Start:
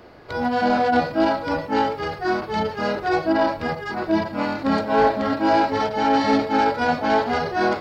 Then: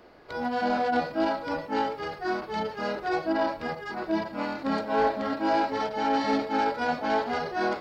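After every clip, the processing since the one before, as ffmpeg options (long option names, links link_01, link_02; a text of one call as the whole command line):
ffmpeg -i in.wav -af "equalizer=frequency=98:width=1.3:gain=-9,volume=-6.5dB" out.wav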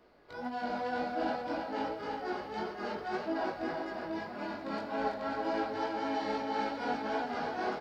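ffmpeg -i in.wav -filter_complex "[0:a]flanger=delay=15:depth=5.7:speed=1.8,asplit=2[link_01][link_02];[link_02]aecho=0:1:330|528|646.8|718.1|760.8:0.631|0.398|0.251|0.158|0.1[link_03];[link_01][link_03]amix=inputs=2:normalize=0,volume=-6.5dB" out.wav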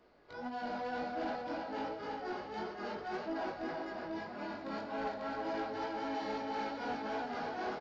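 ffmpeg -i in.wav -af "asoftclip=type=tanh:threshold=-28dB,aresample=16000,aresample=44100,volume=-2.5dB" out.wav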